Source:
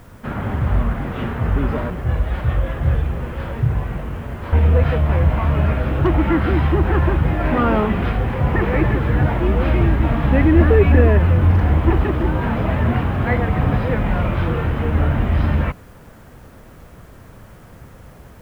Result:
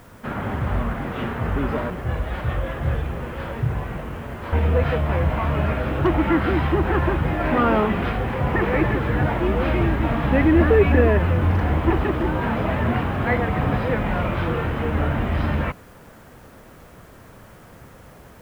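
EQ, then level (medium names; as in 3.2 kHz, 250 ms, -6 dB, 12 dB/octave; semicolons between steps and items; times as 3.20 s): bass shelf 150 Hz -8 dB; 0.0 dB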